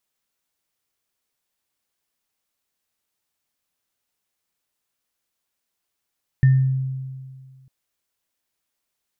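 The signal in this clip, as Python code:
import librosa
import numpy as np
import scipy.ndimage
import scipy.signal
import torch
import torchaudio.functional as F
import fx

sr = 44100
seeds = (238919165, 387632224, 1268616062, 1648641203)

y = fx.additive_free(sr, length_s=1.25, hz=132.0, level_db=-9.5, upper_db=(-18,), decay_s=1.91, upper_decays_s=(0.41,), upper_hz=(1800.0,))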